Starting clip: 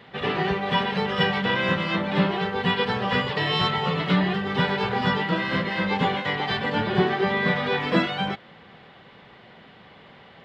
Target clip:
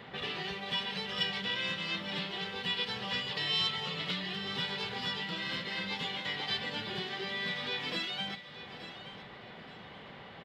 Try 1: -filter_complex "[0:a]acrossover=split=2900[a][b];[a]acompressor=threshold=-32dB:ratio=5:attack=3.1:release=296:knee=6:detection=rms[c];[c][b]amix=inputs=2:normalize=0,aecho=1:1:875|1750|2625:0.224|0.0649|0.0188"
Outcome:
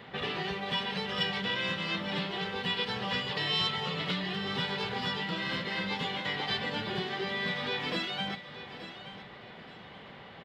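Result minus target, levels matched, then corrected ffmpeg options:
compressor: peak gain reduction -5.5 dB
-filter_complex "[0:a]acrossover=split=2900[a][b];[a]acompressor=threshold=-39dB:ratio=5:attack=3.1:release=296:knee=6:detection=rms[c];[c][b]amix=inputs=2:normalize=0,aecho=1:1:875|1750|2625:0.224|0.0649|0.0188"

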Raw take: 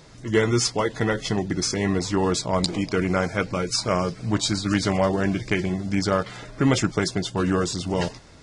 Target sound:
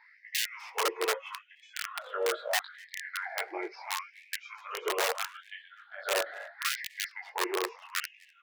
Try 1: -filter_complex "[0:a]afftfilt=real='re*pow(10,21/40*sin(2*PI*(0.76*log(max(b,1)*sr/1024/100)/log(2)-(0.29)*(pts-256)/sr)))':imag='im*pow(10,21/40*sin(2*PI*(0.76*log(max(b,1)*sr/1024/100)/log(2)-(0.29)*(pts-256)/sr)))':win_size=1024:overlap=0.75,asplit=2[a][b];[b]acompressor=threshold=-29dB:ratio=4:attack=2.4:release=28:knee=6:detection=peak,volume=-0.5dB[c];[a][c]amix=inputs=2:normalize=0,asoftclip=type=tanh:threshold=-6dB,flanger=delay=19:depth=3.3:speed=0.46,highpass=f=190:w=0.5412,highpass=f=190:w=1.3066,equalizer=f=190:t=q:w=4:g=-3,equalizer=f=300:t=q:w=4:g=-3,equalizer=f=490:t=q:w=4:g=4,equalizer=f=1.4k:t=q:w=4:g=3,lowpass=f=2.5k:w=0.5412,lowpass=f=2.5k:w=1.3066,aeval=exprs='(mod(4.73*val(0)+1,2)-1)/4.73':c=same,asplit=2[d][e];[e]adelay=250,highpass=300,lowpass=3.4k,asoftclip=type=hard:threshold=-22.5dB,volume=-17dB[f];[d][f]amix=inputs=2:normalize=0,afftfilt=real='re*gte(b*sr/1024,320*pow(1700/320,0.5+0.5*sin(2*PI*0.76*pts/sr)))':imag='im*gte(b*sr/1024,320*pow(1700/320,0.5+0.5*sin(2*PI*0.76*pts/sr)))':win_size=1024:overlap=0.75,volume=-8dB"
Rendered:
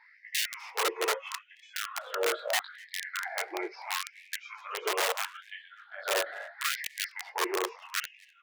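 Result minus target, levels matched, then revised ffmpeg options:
compressor: peak gain reduction -6.5 dB
-filter_complex "[0:a]afftfilt=real='re*pow(10,21/40*sin(2*PI*(0.76*log(max(b,1)*sr/1024/100)/log(2)-(0.29)*(pts-256)/sr)))':imag='im*pow(10,21/40*sin(2*PI*(0.76*log(max(b,1)*sr/1024/100)/log(2)-(0.29)*(pts-256)/sr)))':win_size=1024:overlap=0.75,asplit=2[a][b];[b]acompressor=threshold=-38dB:ratio=4:attack=2.4:release=28:knee=6:detection=peak,volume=-0.5dB[c];[a][c]amix=inputs=2:normalize=0,asoftclip=type=tanh:threshold=-6dB,flanger=delay=19:depth=3.3:speed=0.46,highpass=f=190:w=0.5412,highpass=f=190:w=1.3066,equalizer=f=190:t=q:w=4:g=-3,equalizer=f=300:t=q:w=4:g=-3,equalizer=f=490:t=q:w=4:g=4,equalizer=f=1.4k:t=q:w=4:g=3,lowpass=f=2.5k:w=0.5412,lowpass=f=2.5k:w=1.3066,aeval=exprs='(mod(4.73*val(0)+1,2)-1)/4.73':c=same,asplit=2[d][e];[e]adelay=250,highpass=300,lowpass=3.4k,asoftclip=type=hard:threshold=-22.5dB,volume=-17dB[f];[d][f]amix=inputs=2:normalize=0,afftfilt=real='re*gte(b*sr/1024,320*pow(1700/320,0.5+0.5*sin(2*PI*0.76*pts/sr)))':imag='im*gte(b*sr/1024,320*pow(1700/320,0.5+0.5*sin(2*PI*0.76*pts/sr)))':win_size=1024:overlap=0.75,volume=-8dB"

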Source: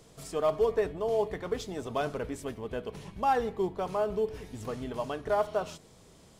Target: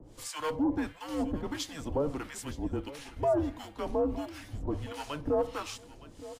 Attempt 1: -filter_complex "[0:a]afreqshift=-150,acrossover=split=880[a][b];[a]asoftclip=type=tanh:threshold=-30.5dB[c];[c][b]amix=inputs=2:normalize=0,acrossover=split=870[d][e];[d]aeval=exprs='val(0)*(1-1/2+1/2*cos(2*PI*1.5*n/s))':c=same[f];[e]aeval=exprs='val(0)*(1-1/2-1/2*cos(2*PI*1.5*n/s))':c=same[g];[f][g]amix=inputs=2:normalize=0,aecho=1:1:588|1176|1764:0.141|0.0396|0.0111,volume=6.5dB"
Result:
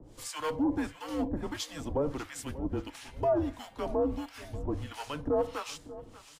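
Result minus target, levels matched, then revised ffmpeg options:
echo 0.328 s early
-filter_complex "[0:a]afreqshift=-150,acrossover=split=880[a][b];[a]asoftclip=type=tanh:threshold=-30.5dB[c];[c][b]amix=inputs=2:normalize=0,acrossover=split=870[d][e];[d]aeval=exprs='val(0)*(1-1/2+1/2*cos(2*PI*1.5*n/s))':c=same[f];[e]aeval=exprs='val(0)*(1-1/2-1/2*cos(2*PI*1.5*n/s))':c=same[g];[f][g]amix=inputs=2:normalize=0,aecho=1:1:916|1832|2748:0.141|0.0396|0.0111,volume=6.5dB"

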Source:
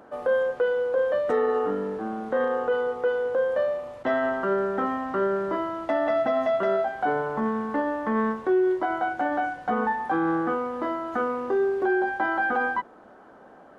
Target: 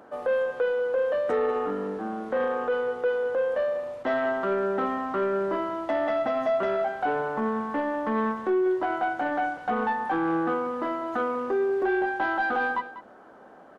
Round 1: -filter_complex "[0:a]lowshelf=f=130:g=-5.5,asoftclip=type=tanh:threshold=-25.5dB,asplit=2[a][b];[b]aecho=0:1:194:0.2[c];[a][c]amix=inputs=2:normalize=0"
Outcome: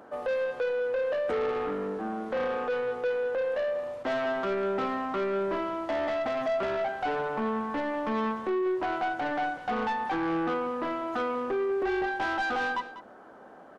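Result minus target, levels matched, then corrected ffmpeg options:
soft clip: distortion +10 dB
-filter_complex "[0:a]lowshelf=f=130:g=-5.5,asoftclip=type=tanh:threshold=-17.5dB,asplit=2[a][b];[b]aecho=0:1:194:0.2[c];[a][c]amix=inputs=2:normalize=0"

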